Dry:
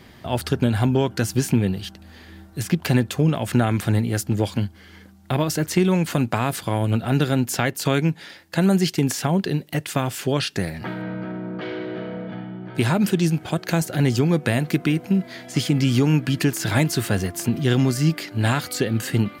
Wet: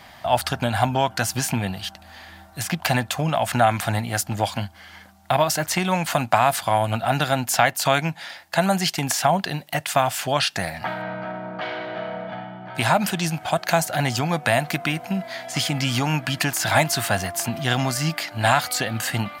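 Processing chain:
low shelf with overshoot 540 Hz −8.5 dB, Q 3
level +4 dB

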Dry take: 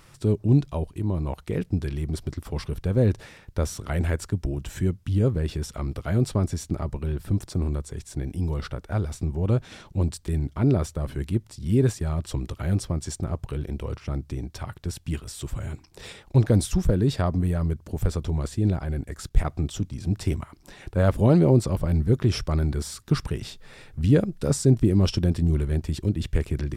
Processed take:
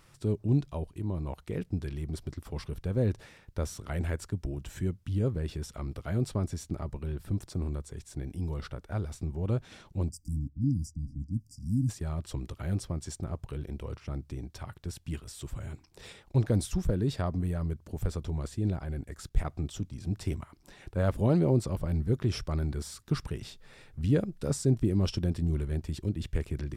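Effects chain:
0:10.09–0:11.89: time-frequency box erased 320–4,700 Hz
0:10.48–0:11.37: low-pass that shuts in the quiet parts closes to 1,000 Hz, open at −19.5 dBFS
level −7 dB

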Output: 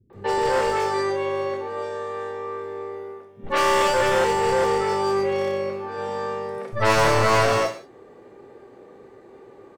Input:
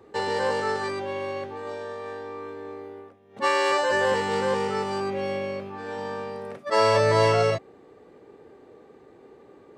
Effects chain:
wavefolder on the positive side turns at −21.5 dBFS
three-band delay without the direct sound lows, mids, highs 100/130 ms, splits 200/3,600 Hz
reverb whose tail is shaped and stops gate 200 ms falling, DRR 4.5 dB
level +3.5 dB

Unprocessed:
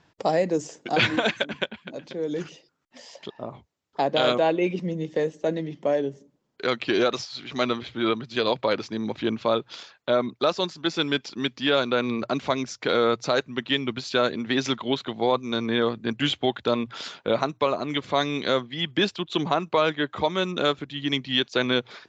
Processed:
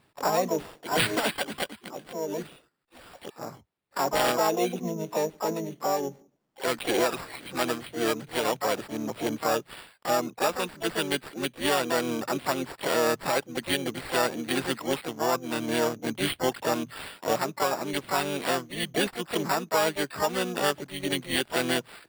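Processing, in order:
pitch-shifted copies added +5 semitones −2 dB, +12 semitones −8 dB
decimation without filtering 7×
level −5.5 dB

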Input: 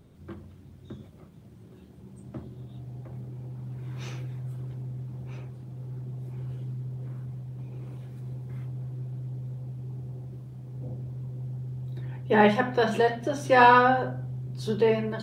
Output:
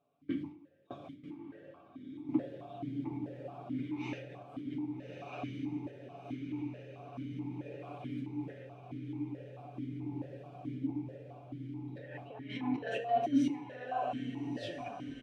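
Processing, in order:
turntable brake at the end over 0.65 s
noise gate with hold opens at −37 dBFS
comb filter 7 ms, depth 73%
compressor whose output falls as the input rises −34 dBFS, ratio −1
on a send: feedback delay with all-pass diffusion 1,291 ms, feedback 57%, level −7 dB
on the sum: coupled-rooms reverb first 0.42 s, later 2.6 s, from −20 dB, DRR 7.5 dB
formant filter that steps through the vowels 4.6 Hz
level +10.5 dB

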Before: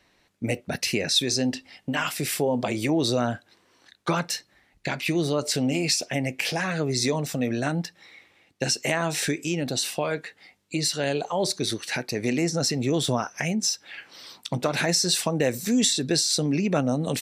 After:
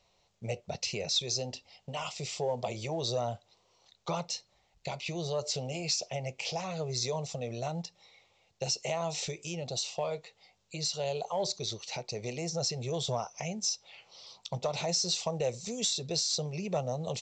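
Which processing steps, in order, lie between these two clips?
phaser with its sweep stopped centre 680 Hz, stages 4
harmonic generator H 5 −28 dB, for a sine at −10.5 dBFS
level −6 dB
mu-law 128 kbit/s 16,000 Hz

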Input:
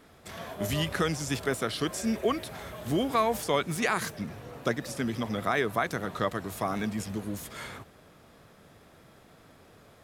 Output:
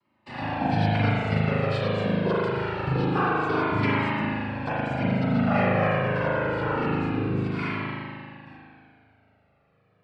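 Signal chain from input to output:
noise gate with hold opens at −43 dBFS
low-pass filter 3,100 Hz 24 dB per octave
low-shelf EQ 180 Hz +7.5 dB
downward compressor, threshold −30 dBFS, peak gain reduction 10 dB
cochlear-implant simulation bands 8
spring reverb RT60 2.2 s, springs 38 ms, chirp 65 ms, DRR −7 dB
flanger whose copies keep moving one way falling 0.25 Hz
level +8 dB

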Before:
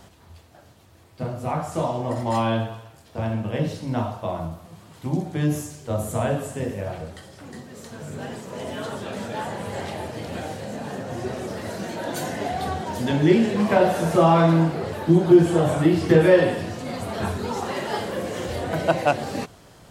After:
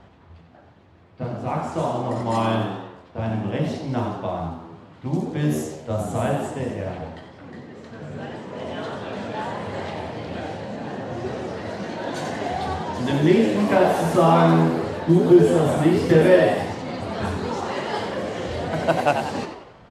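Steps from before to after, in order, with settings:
echo with shifted repeats 91 ms, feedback 49%, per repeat +83 Hz, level −7.5 dB
low-pass that shuts in the quiet parts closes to 2,400 Hz, open at −17 dBFS

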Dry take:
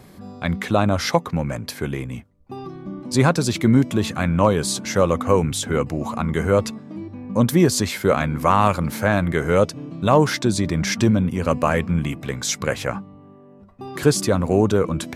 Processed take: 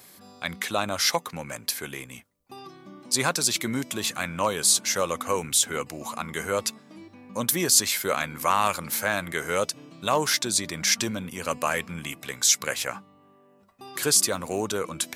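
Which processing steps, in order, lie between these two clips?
spectral tilt +4 dB per octave
level −5.5 dB

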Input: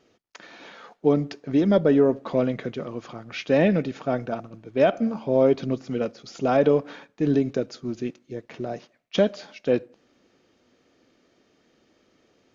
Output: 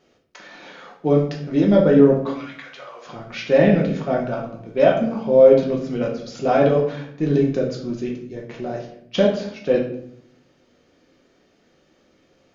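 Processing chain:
0:02.31–0:03.05: high-pass filter 1,500 Hz → 510 Hz 24 dB per octave
rectangular room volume 120 cubic metres, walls mixed, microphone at 0.96 metres

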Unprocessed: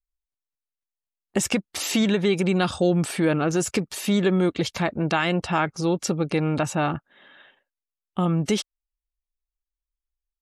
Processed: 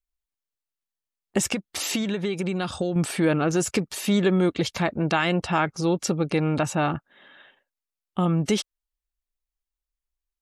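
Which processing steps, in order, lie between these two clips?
0:01.45–0:02.96: downward compressor, threshold −23 dBFS, peak gain reduction 7.5 dB

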